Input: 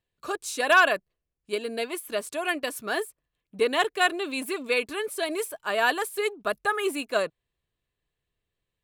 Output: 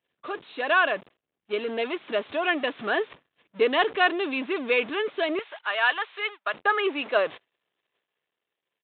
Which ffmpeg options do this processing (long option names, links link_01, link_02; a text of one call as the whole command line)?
ffmpeg -i in.wav -af "aeval=exprs='val(0)+0.5*0.0224*sgn(val(0))':channel_layout=same,asetnsamples=nb_out_samples=441:pad=0,asendcmd='5.39 highpass f 1000;6.54 highpass f 370',highpass=210,agate=range=-38dB:threshold=-37dB:ratio=16:detection=peak,dynaudnorm=framelen=360:gausssize=7:maxgain=7dB,asoftclip=type=hard:threshold=-7dB,aresample=8000,aresample=44100,volume=-4dB" out.wav